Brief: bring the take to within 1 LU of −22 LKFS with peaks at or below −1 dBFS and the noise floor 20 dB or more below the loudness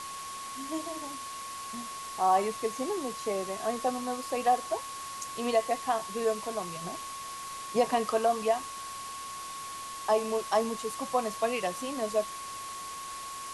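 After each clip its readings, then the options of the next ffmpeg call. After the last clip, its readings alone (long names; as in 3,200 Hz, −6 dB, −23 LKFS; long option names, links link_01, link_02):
interfering tone 1,100 Hz; level of the tone −39 dBFS; background noise floor −40 dBFS; target noise floor −52 dBFS; integrated loudness −32.0 LKFS; sample peak −13.5 dBFS; target loudness −22.0 LKFS
→ -af "bandreject=frequency=1100:width=30"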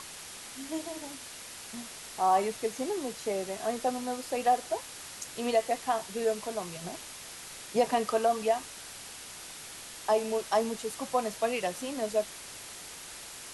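interfering tone none found; background noise floor −45 dBFS; target noise floor −53 dBFS
→ -af "afftdn=noise_reduction=8:noise_floor=-45"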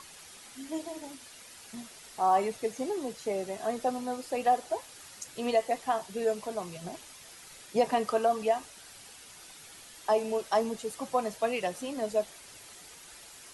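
background noise floor −51 dBFS; integrated loudness −31.0 LKFS; sample peak −13.5 dBFS; target loudness −22.0 LKFS
→ -af "volume=9dB"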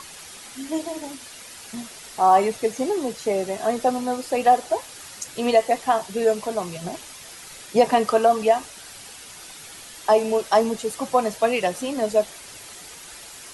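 integrated loudness −22.0 LKFS; sample peak −4.5 dBFS; background noise floor −42 dBFS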